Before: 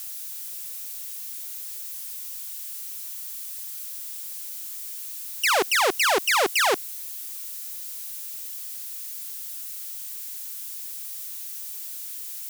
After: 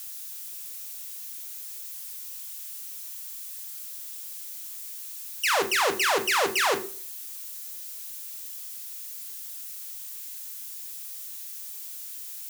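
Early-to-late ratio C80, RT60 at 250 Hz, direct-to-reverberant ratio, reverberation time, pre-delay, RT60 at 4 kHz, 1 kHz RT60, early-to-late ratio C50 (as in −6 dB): 18.0 dB, 0.50 s, 6.0 dB, 0.45 s, 3 ms, 0.40 s, 0.45 s, 13.5 dB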